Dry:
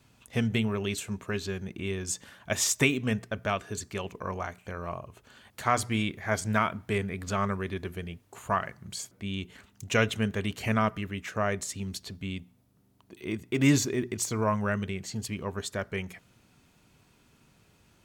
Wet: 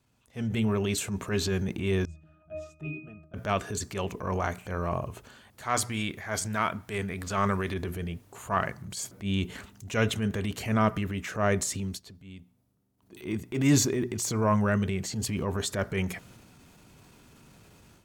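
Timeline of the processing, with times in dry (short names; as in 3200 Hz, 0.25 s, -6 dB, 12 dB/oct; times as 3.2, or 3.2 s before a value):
2.05–3.34 octave resonator D#, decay 0.39 s
5.65–7.74 tilt shelf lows -3.5 dB, about 680 Hz
11.77–13.2 dip -16.5 dB, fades 0.25 s
whole clip: AGC gain up to 16 dB; transient shaper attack -8 dB, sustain +4 dB; bell 2700 Hz -3 dB 1.9 oct; gain -8 dB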